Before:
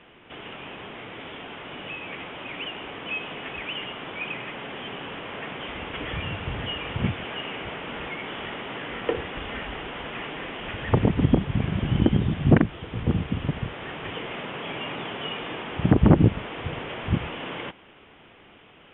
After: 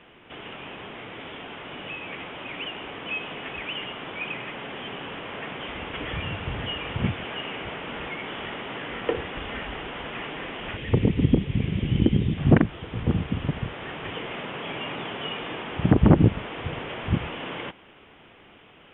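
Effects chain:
0:10.77–0:12.38: flat-topped bell 1,000 Hz −9.5 dB

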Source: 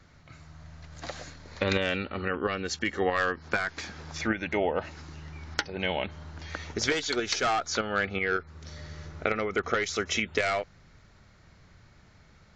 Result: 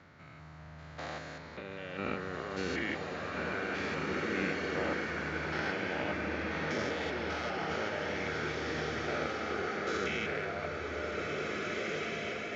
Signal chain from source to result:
spectrum averaged block by block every 200 ms
high-pass filter 110 Hz 12 dB per octave
bass and treble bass −3 dB, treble −14 dB
compressor whose output falls as the input rises −39 dBFS, ratio −1
slow-attack reverb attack 2,050 ms, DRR −2.5 dB

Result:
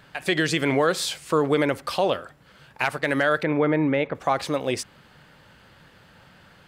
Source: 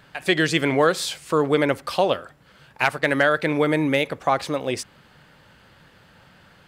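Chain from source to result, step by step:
0:03.43–0:04.15: low-pass filter 2,000 Hz 12 dB per octave
brickwall limiter −10.5 dBFS, peak gain reduction 5 dB

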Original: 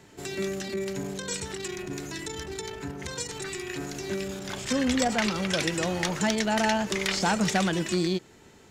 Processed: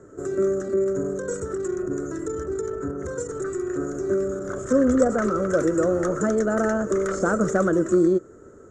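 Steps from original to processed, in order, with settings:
drawn EQ curve 100 Hz 0 dB, 180 Hz −5 dB, 330 Hz +5 dB, 570 Hz +6 dB, 860 Hz −16 dB, 1,300 Hz +6 dB, 2,500 Hz −30 dB, 4,800 Hz −27 dB, 6,900 Hz −5 dB, 13,000 Hz −27 dB
level +5 dB

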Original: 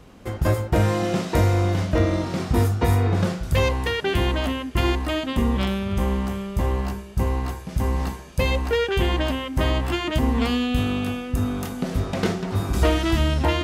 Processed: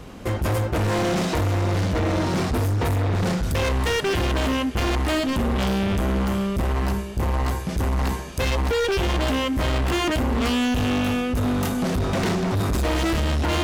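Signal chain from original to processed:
in parallel at +1 dB: compressor whose output falls as the input rises −23 dBFS
on the sum: hard clipping −20 dBFS, distortion −7 dB

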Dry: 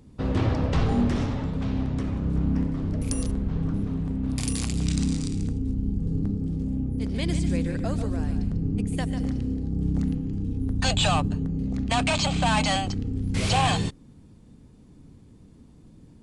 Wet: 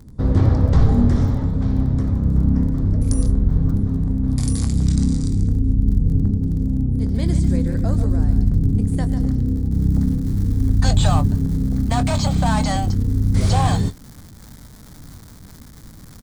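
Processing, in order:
low-shelf EQ 180 Hz +11.5 dB
double-tracking delay 22 ms −12 dB
surface crackle 15 per second −32 dBFS, from 0:07.15 70 per second, from 0:09.75 410 per second
parametric band 2,700 Hz −13 dB 0.54 octaves
level +1 dB

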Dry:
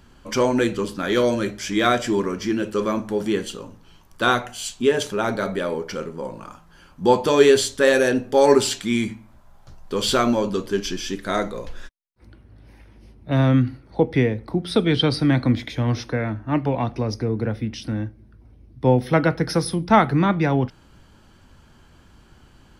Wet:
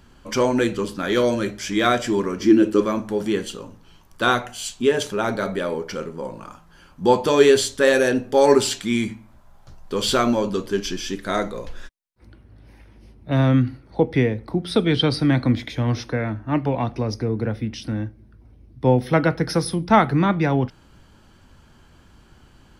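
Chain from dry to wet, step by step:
0:02.40–0:02.81: parametric band 300 Hz +14 dB 0.58 octaves

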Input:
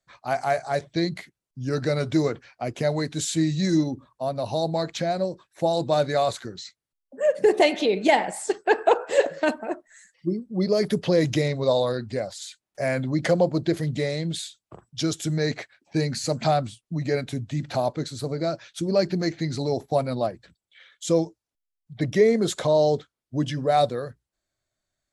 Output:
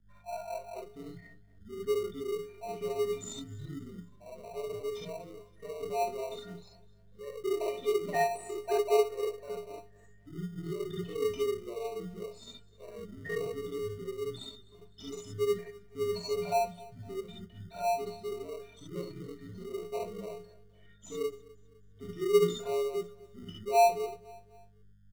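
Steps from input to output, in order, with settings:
spectral envelope exaggerated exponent 3
stiff-string resonator 220 Hz, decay 0.35 s, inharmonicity 0.03
mains hum 50 Hz, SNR 24 dB
reverb whose tail is shaped and stops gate 90 ms rising, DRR −4 dB
in parallel at −7 dB: decimation without filtering 26×
on the sum: frequency shifter −48 Hz
on a send: repeating echo 254 ms, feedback 42%, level −21.5 dB
on the sum: level −4 dB

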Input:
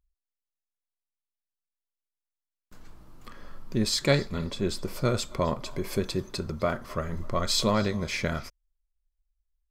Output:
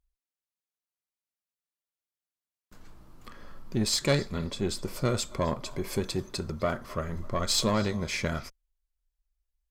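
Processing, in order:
dynamic equaliser 7,900 Hz, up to +4 dB, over −49 dBFS, Q 1.4
tube saturation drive 15 dB, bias 0.35

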